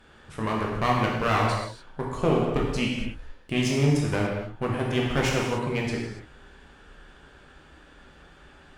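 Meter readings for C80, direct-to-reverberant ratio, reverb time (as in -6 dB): 3.5 dB, -2.5 dB, not exponential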